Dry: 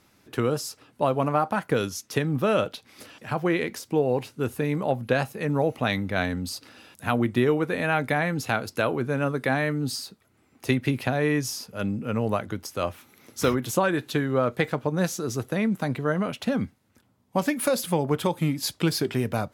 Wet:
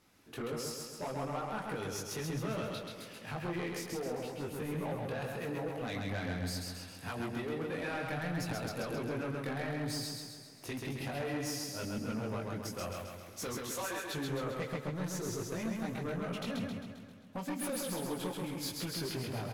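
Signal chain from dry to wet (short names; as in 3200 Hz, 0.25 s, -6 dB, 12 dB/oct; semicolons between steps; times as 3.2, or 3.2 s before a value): 13.55–14.12 HPF 640 Hz 12 dB/oct; compressor, threshold -25 dBFS, peak gain reduction 8.5 dB; chorus voices 4, 1.3 Hz, delay 20 ms, depth 3 ms; soft clip -31 dBFS, distortion -11 dB; feedback echo 0.133 s, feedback 56%, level -3 dB; warbling echo 0.156 s, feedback 79%, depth 189 cents, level -23.5 dB; gain -3 dB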